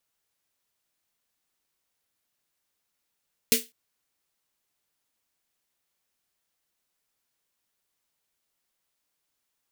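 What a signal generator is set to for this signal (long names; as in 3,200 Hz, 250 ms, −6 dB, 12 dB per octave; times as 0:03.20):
synth snare length 0.20 s, tones 240 Hz, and 450 Hz, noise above 2,100 Hz, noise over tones 6 dB, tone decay 0.20 s, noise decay 0.23 s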